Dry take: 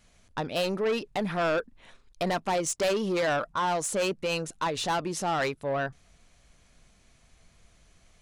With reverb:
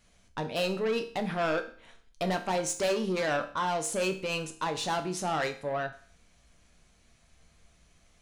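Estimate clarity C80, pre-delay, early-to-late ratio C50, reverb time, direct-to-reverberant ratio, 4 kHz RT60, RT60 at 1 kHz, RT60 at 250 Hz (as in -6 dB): 16.5 dB, 6 ms, 12.5 dB, 0.45 s, 6.0 dB, 0.45 s, 0.45 s, 0.45 s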